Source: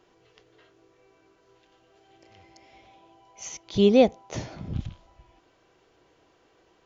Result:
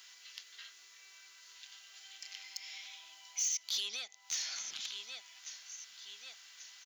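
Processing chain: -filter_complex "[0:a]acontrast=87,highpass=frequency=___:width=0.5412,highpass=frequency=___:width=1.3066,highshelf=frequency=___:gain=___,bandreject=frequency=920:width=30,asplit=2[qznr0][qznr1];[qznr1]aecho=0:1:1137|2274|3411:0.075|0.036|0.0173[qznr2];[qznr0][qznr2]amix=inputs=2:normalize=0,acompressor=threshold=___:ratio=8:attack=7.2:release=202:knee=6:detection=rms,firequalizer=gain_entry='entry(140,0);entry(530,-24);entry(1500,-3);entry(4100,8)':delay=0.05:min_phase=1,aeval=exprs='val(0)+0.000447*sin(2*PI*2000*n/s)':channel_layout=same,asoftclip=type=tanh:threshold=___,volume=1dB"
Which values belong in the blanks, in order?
650, 650, 6100, 6.5, -36dB, -28dB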